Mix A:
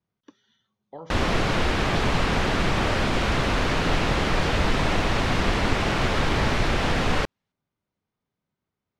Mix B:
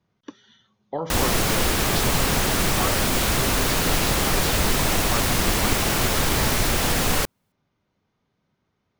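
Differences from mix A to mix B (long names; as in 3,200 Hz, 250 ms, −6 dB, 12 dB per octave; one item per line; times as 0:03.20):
speech +11.5 dB
background: remove low-pass filter 3,300 Hz 12 dB per octave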